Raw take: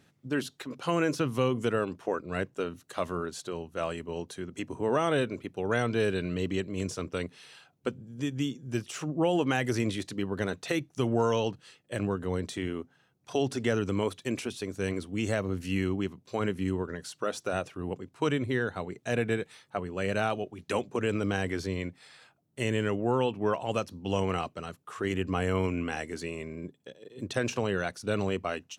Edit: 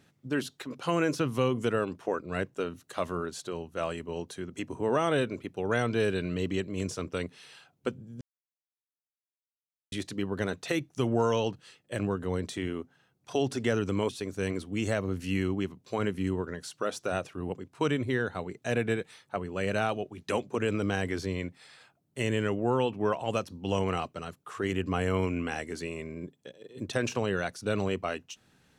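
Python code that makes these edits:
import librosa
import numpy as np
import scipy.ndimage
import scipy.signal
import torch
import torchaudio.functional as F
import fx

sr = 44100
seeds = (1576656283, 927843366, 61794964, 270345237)

y = fx.edit(x, sr, fx.silence(start_s=8.21, length_s=1.71),
    fx.cut(start_s=14.09, length_s=0.41), tone=tone)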